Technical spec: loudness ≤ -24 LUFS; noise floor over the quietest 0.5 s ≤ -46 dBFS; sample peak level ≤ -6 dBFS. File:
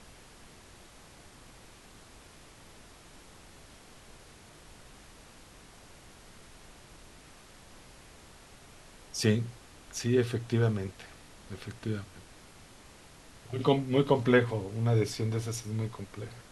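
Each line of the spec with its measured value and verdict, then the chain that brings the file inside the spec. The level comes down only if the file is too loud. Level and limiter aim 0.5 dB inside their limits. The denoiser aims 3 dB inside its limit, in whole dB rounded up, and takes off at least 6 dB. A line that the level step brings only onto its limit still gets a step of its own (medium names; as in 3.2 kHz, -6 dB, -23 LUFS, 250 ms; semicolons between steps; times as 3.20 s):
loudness -30.5 LUFS: pass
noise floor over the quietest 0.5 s -53 dBFS: pass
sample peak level -10.5 dBFS: pass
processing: none needed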